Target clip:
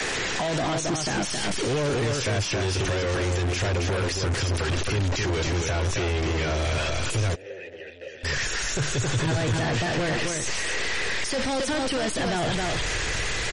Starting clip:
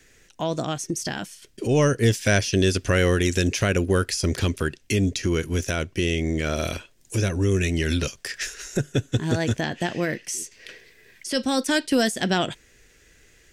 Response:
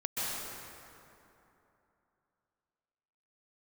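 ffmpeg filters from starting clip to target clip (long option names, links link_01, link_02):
-filter_complex "[0:a]aeval=exprs='val(0)+0.5*0.0316*sgn(val(0))':channel_layout=same,acrossover=split=82|630[link_01][link_02][link_03];[link_01]acompressor=threshold=-43dB:ratio=4[link_04];[link_02]acompressor=threshold=-22dB:ratio=4[link_05];[link_03]acompressor=threshold=-36dB:ratio=4[link_06];[link_04][link_05][link_06]amix=inputs=3:normalize=0,asubboost=boost=12:cutoff=62,acompressor=threshold=-23dB:ratio=5,asplit=2[link_07][link_08];[link_08]aecho=0:1:270:0.531[link_09];[link_07][link_09]amix=inputs=2:normalize=0,alimiter=limit=-24dB:level=0:latency=1:release=23,asplit=2[link_10][link_11];[link_11]highpass=frequency=720:poles=1,volume=33dB,asoftclip=type=tanh:threshold=-24dB[link_12];[link_10][link_12]amix=inputs=2:normalize=0,lowpass=frequency=4000:poles=1,volume=-6dB,adynamicequalizer=threshold=0.00501:dfrequency=120:dqfactor=1.7:tfrequency=120:tqfactor=1.7:attack=5:release=100:ratio=0.375:range=2.5:mode=boostabove:tftype=bell,asplit=3[link_13][link_14][link_15];[link_13]afade=type=out:start_time=7.34:duration=0.02[link_16];[link_14]asplit=3[link_17][link_18][link_19];[link_17]bandpass=frequency=530:width_type=q:width=8,volume=0dB[link_20];[link_18]bandpass=frequency=1840:width_type=q:width=8,volume=-6dB[link_21];[link_19]bandpass=frequency=2480:width_type=q:width=8,volume=-9dB[link_22];[link_20][link_21][link_22]amix=inputs=3:normalize=0,afade=type=in:start_time=7.34:duration=0.02,afade=type=out:start_time=8.23:duration=0.02[link_23];[link_15]afade=type=in:start_time=8.23:duration=0.02[link_24];[link_16][link_23][link_24]amix=inputs=3:normalize=0,volume=4dB" -ar 48000 -c:a libmp3lame -b:a 40k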